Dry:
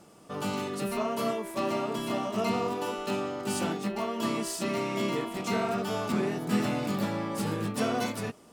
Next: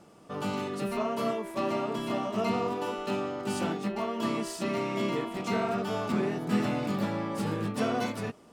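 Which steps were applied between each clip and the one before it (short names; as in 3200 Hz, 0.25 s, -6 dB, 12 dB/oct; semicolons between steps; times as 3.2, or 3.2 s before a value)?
high shelf 5600 Hz -8.5 dB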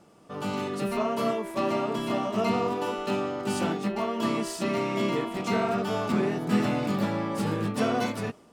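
AGC gain up to 4.5 dB; gain -1.5 dB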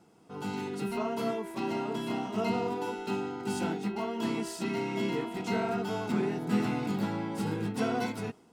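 notch comb 590 Hz; gain -3.5 dB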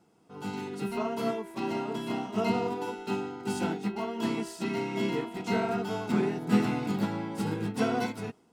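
upward expander 1.5:1, over -41 dBFS; gain +5 dB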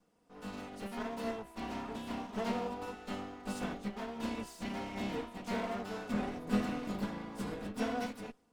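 minimum comb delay 4.1 ms; gain -6.5 dB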